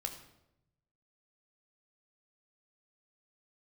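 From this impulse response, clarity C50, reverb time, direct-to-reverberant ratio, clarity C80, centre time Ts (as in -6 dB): 9.0 dB, 0.85 s, 5.0 dB, 11.0 dB, 17 ms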